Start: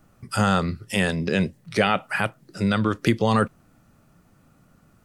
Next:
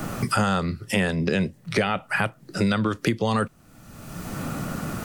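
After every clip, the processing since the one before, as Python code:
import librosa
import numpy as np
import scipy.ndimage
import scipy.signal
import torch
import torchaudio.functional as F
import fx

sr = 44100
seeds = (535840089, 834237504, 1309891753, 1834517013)

y = fx.band_squash(x, sr, depth_pct=100)
y = y * 10.0 ** (-1.5 / 20.0)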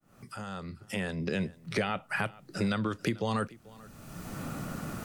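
y = fx.fade_in_head(x, sr, length_s=1.5)
y = y + 10.0 ** (-21.5 / 20.0) * np.pad(y, (int(439 * sr / 1000.0), 0))[:len(y)]
y = y * 10.0 ** (-7.5 / 20.0)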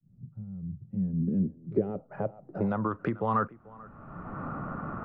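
y = fx.wiener(x, sr, points=9)
y = fx.filter_sweep_lowpass(y, sr, from_hz=150.0, to_hz=1200.0, start_s=0.85, end_s=3.05, q=2.9)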